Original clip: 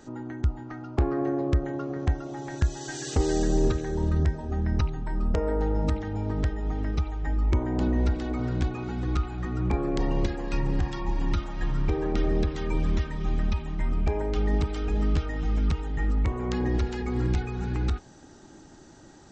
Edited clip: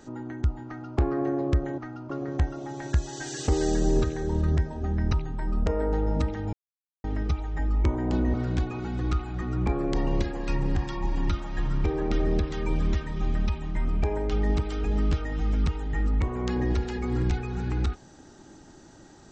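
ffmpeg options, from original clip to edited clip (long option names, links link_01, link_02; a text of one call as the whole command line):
ffmpeg -i in.wav -filter_complex "[0:a]asplit=6[link_01][link_02][link_03][link_04][link_05][link_06];[link_01]atrim=end=1.782[link_07];[link_02]atrim=start=0.658:end=0.982[link_08];[link_03]atrim=start=1.778:end=6.21,asetpts=PTS-STARTPTS,afade=type=out:start_time=4.428:duration=0.004:curve=hsin[link_09];[link_04]atrim=start=6.21:end=6.72,asetpts=PTS-STARTPTS,volume=0[link_10];[link_05]atrim=start=6.72:end=8.022,asetpts=PTS-STARTPTS,afade=type=in:duration=0.004:curve=hsin[link_11];[link_06]atrim=start=8.378[link_12];[link_07][link_08]acrossfade=duration=0.004:curve1=hsin:curve2=hsin[link_13];[link_09][link_10][link_11]concat=n=3:v=0:a=1[link_14];[link_13][link_14]acrossfade=duration=0.004:curve1=hsin:curve2=hsin[link_15];[link_15][link_12]acrossfade=duration=0.004:curve1=hsin:curve2=hsin" out.wav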